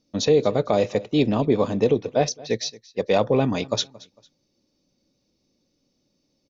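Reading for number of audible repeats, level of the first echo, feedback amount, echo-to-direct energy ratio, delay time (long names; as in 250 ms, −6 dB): 2, −21.5 dB, 33%, −21.0 dB, 226 ms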